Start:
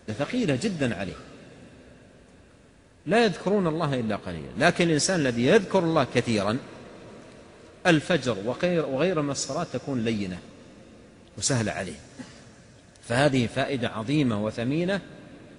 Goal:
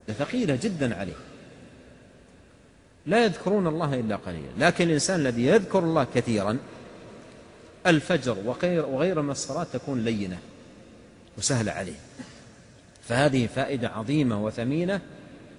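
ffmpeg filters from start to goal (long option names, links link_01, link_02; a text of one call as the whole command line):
ffmpeg -i in.wav -af "adynamicequalizer=threshold=0.00708:dfrequency=3300:dqfactor=0.76:tfrequency=3300:tqfactor=0.76:attack=5:release=100:ratio=0.375:range=3:mode=cutabove:tftype=bell" out.wav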